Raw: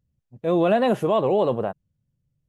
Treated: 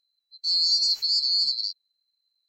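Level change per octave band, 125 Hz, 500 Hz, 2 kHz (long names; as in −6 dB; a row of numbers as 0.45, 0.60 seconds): below −35 dB, below −40 dB, below −25 dB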